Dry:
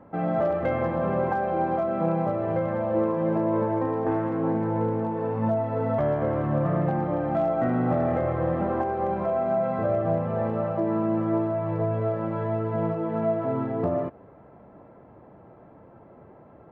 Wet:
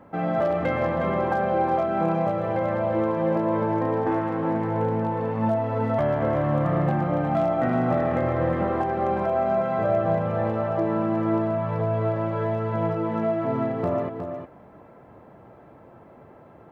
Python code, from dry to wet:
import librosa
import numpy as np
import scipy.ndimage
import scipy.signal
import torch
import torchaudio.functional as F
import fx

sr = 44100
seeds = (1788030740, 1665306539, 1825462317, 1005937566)

y = fx.high_shelf(x, sr, hz=2000.0, db=10.0)
y = y + 10.0 ** (-7.5 / 20.0) * np.pad(y, (int(362 * sr / 1000.0), 0))[:len(y)]